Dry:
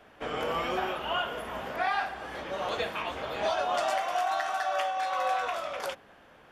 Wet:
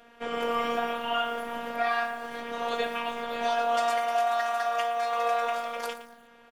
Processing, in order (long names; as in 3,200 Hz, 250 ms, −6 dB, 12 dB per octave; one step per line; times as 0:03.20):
echo with shifted repeats 123 ms, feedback 35%, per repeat +79 Hz, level −21 dB
phases set to zero 235 Hz
feedback echo at a low word length 115 ms, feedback 35%, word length 8 bits, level −13 dB
level +3 dB